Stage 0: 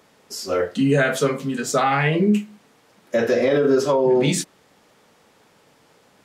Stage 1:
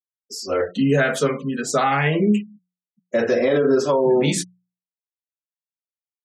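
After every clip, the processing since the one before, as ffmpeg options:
ffmpeg -i in.wav -af "afftfilt=real='re*gte(hypot(re,im),0.0158)':imag='im*gte(hypot(re,im),0.0158)':win_size=1024:overlap=0.75,bandreject=frequency=60:width_type=h:width=6,bandreject=frequency=120:width_type=h:width=6,bandreject=frequency=180:width_type=h:width=6" out.wav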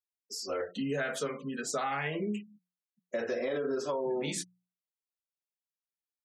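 ffmpeg -i in.wav -af "lowshelf=frequency=210:gain=-9.5,acompressor=threshold=-28dB:ratio=2,volume=-6.5dB" out.wav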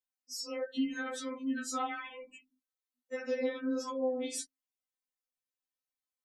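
ffmpeg -i in.wav -af "afftfilt=real='re*3.46*eq(mod(b,12),0)':imag='im*3.46*eq(mod(b,12),0)':win_size=2048:overlap=0.75" out.wav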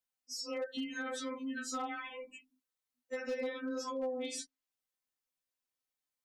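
ffmpeg -i in.wav -filter_complex "[0:a]acrossover=split=580|7000[link_01][link_02][link_03];[link_01]acompressor=threshold=-41dB:ratio=4[link_04];[link_02]acompressor=threshold=-40dB:ratio=4[link_05];[link_03]acompressor=threshold=-57dB:ratio=4[link_06];[link_04][link_05][link_06]amix=inputs=3:normalize=0,volume=32.5dB,asoftclip=hard,volume=-32.5dB,volume=1.5dB" out.wav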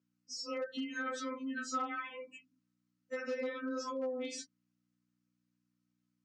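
ffmpeg -i in.wav -af "aeval=exprs='val(0)+0.000251*(sin(2*PI*60*n/s)+sin(2*PI*2*60*n/s)/2+sin(2*PI*3*60*n/s)/3+sin(2*PI*4*60*n/s)/4+sin(2*PI*5*60*n/s)/5)':channel_layout=same,highpass=frequency=160:width=0.5412,highpass=frequency=160:width=1.3066,equalizer=frequency=820:width_type=q:width=4:gain=-7,equalizer=frequency=1300:width_type=q:width=4:gain=6,equalizer=frequency=3600:width_type=q:width=4:gain=-5,lowpass=frequency=6900:width=0.5412,lowpass=frequency=6900:width=1.3066" out.wav

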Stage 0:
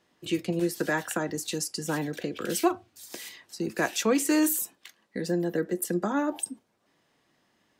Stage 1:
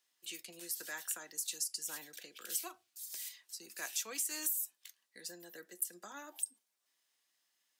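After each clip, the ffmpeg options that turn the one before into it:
ffmpeg -i in.wav -af "aderivative,acompressor=threshold=-31dB:ratio=6,volume=-1.5dB" out.wav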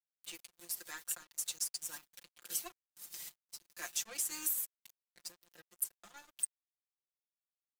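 ffmpeg -i in.wav -af "aeval=exprs='sgn(val(0))*max(abs(val(0))-0.00447,0)':channel_layout=same,aecho=1:1:5.7:0.82" out.wav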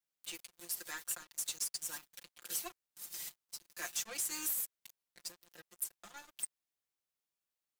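ffmpeg -i in.wav -af "asoftclip=type=tanh:threshold=-34dB,volume=3.5dB" out.wav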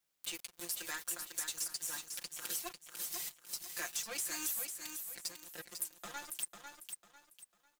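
ffmpeg -i in.wav -filter_complex "[0:a]acompressor=threshold=-46dB:ratio=4,asplit=2[link_01][link_02];[link_02]aecho=0:1:498|996|1494|1992:0.473|0.142|0.0426|0.0128[link_03];[link_01][link_03]amix=inputs=2:normalize=0,volume=8dB" out.wav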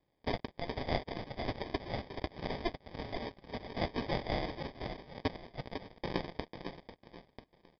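ffmpeg -i in.wav -af "aeval=exprs='val(0)*sin(2*PI*340*n/s)':channel_layout=same,aresample=11025,acrusher=samples=8:mix=1:aa=0.000001,aresample=44100,volume=13dB" out.wav

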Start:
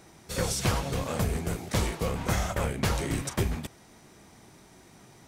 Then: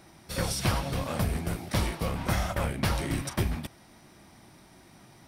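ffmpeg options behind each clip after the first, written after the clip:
ffmpeg -i in.wav -af "superequalizer=7b=0.562:15b=0.447" out.wav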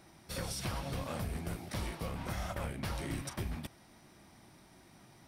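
ffmpeg -i in.wav -af "alimiter=limit=-22dB:level=0:latency=1:release=260,volume=-5dB" out.wav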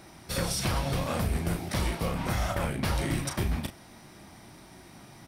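ffmpeg -i in.wav -filter_complex "[0:a]asplit=2[link_01][link_02];[link_02]adelay=35,volume=-8.5dB[link_03];[link_01][link_03]amix=inputs=2:normalize=0,volume=8.5dB" out.wav

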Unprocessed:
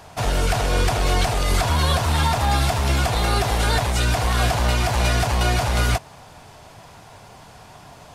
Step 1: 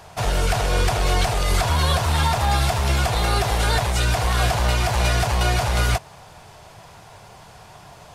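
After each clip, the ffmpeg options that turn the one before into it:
ffmpeg -i in.wav -af "equalizer=frequency=260:width=4.1:gain=-8.5" out.wav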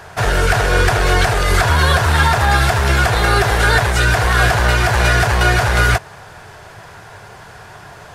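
ffmpeg -i in.wav -af "equalizer=frequency=100:width_type=o:width=0.67:gain=4,equalizer=frequency=400:width_type=o:width=0.67:gain=6,equalizer=frequency=1600:width_type=o:width=0.67:gain=11,volume=3.5dB" out.wav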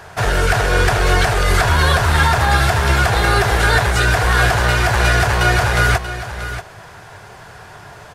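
ffmpeg -i in.wav -af "aecho=1:1:634:0.266,volume=-1dB" out.wav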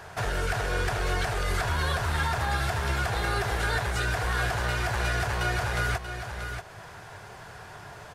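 ffmpeg -i in.wav -af "acompressor=threshold=-31dB:ratio=1.5,volume=-6dB" out.wav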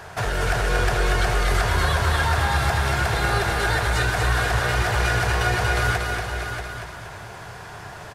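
ffmpeg -i in.wav -af "aecho=1:1:235|470|705|940|1175|1410:0.631|0.297|0.139|0.0655|0.0308|0.0145,volume=4.5dB" out.wav

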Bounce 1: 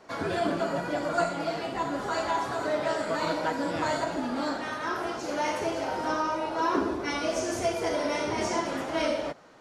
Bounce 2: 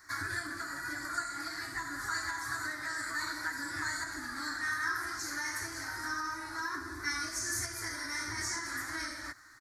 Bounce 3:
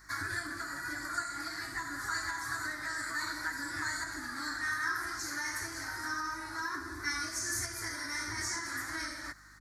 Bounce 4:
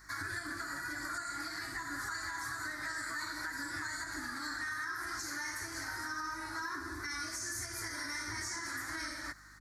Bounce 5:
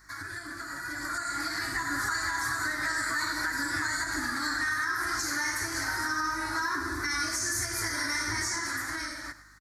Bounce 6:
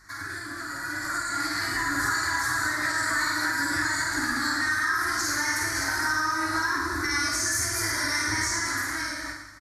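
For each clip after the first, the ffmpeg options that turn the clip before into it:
ffmpeg -i in.wav -af "acompressor=threshold=-29dB:ratio=6,firequalizer=gain_entry='entry(110,0);entry(170,-26);entry(310,-7);entry(450,-28);entry(690,-21);entry(1100,-4);entry(1800,9);entry(2800,-21);entry(4200,3);entry(13000,15)':delay=0.05:min_phase=1" out.wav
ffmpeg -i in.wav -af "aeval=exprs='val(0)+0.000794*(sin(2*PI*50*n/s)+sin(2*PI*2*50*n/s)/2+sin(2*PI*3*50*n/s)/3+sin(2*PI*4*50*n/s)/4+sin(2*PI*5*50*n/s)/5)':channel_layout=same" out.wav
ffmpeg -i in.wav -af "alimiter=level_in=6dB:limit=-24dB:level=0:latency=1:release=106,volume=-6dB" out.wav
ffmpeg -i in.wav -af "aecho=1:1:103:0.188,dynaudnorm=framelen=170:gausssize=13:maxgain=9dB" out.wav
ffmpeg -i in.wav -filter_complex "[0:a]asplit=2[link_01][link_02];[link_02]aecho=0:1:50|112.5|190.6|288.3|410.4:0.631|0.398|0.251|0.158|0.1[link_03];[link_01][link_03]amix=inputs=2:normalize=0,aresample=32000,aresample=44100,volume=2dB" out.wav

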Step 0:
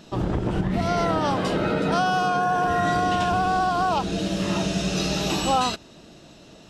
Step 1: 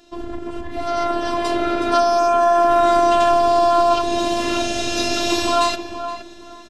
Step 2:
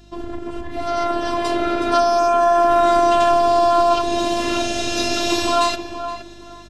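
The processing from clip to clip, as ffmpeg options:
ffmpeg -i in.wav -filter_complex "[0:a]afftfilt=real='hypot(re,im)*cos(PI*b)':imag='0':win_size=512:overlap=0.75,asplit=2[link_01][link_02];[link_02]adelay=469,lowpass=frequency=1800:poles=1,volume=-9dB,asplit=2[link_03][link_04];[link_04]adelay=469,lowpass=frequency=1800:poles=1,volume=0.26,asplit=2[link_05][link_06];[link_06]adelay=469,lowpass=frequency=1800:poles=1,volume=0.26[link_07];[link_01][link_03][link_05][link_07]amix=inputs=4:normalize=0,dynaudnorm=framelen=220:gausssize=11:maxgain=11.5dB" out.wav
ffmpeg -i in.wav -af "aeval=exprs='val(0)+0.00447*(sin(2*PI*50*n/s)+sin(2*PI*2*50*n/s)/2+sin(2*PI*3*50*n/s)/3+sin(2*PI*4*50*n/s)/4+sin(2*PI*5*50*n/s)/5)':channel_layout=same" out.wav

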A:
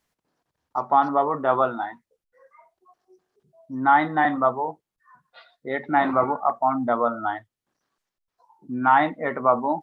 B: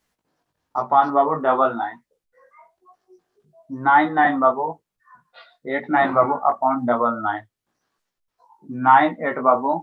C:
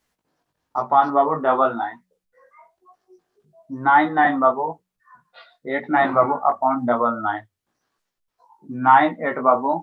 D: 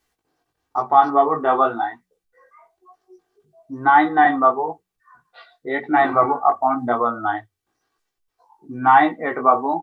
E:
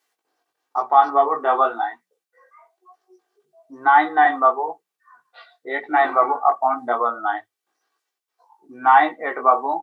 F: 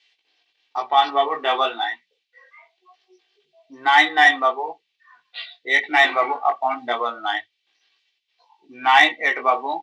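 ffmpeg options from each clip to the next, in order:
ffmpeg -i in.wav -af "flanger=delay=16:depth=3.7:speed=1,volume=6dB" out.wav
ffmpeg -i in.wav -af "bandreject=frequency=92.27:width_type=h:width=4,bandreject=frequency=184.54:width_type=h:width=4" out.wav
ffmpeg -i in.wav -af "aecho=1:1:2.6:0.51" out.wav
ffmpeg -i in.wav -af "highpass=450" out.wav
ffmpeg -i in.wav -af "lowpass=frequency=3500:width=0.5412,lowpass=frequency=3500:width=1.3066,aexciter=amount=8.8:drive=8.4:freq=2100,volume=-2.5dB" out.wav

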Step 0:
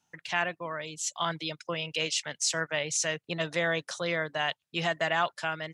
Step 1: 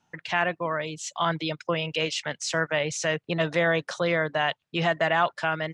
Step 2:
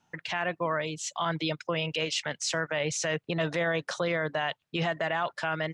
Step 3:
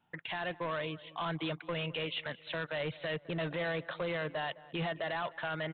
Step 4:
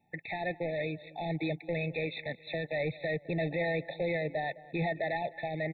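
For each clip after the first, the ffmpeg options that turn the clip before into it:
ffmpeg -i in.wav -filter_complex "[0:a]asplit=2[link_01][link_02];[link_02]alimiter=limit=-23.5dB:level=0:latency=1,volume=-1dB[link_03];[link_01][link_03]amix=inputs=2:normalize=0,aemphasis=mode=reproduction:type=75fm,volume=2dB" out.wav
ffmpeg -i in.wav -af "alimiter=limit=-19dB:level=0:latency=1:release=61" out.wav
ffmpeg -i in.wav -filter_complex "[0:a]aresample=8000,volume=27dB,asoftclip=hard,volume=-27dB,aresample=44100,asplit=2[link_01][link_02];[link_02]adelay=210,lowpass=frequency=2100:poles=1,volume=-18.5dB,asplit=2[link_03][link_04];[link_04]adelay=210,lowpass=frequency=2100:poles=1,volume=0.43,asplit=2[link_05][link_06];[link_06]adelay=210,lowpass=frequency=2100:poles=1,volume=0.43[link_07];[link_01][link_03][link_05][link_07]amix=inputs=4:normalize=0,volume=-4dB" out.wav
ffmpeg -i in.wav -af "afftfilt=real='re*eq(mod(floor(b*sr/1024/880),2),0)':imag='im*eq(mod(floor(b*sr/1024/880),2),0)':win_size=1024:overlap=0.75,volume=4dB" out.wav

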